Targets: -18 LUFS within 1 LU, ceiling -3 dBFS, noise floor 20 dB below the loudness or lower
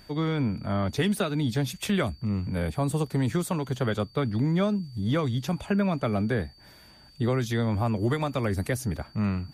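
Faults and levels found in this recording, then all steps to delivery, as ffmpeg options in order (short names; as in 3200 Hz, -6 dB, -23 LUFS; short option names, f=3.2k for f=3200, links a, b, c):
steady tone 4600 Hz; tone level -54 dBFS; loudness -27.5 LUFS; peak -15.0 dBFS; loudness target -18.0 LUFS
-> -af "bandreject=f=4.6k:w=30"
-af "volume=9.5dB"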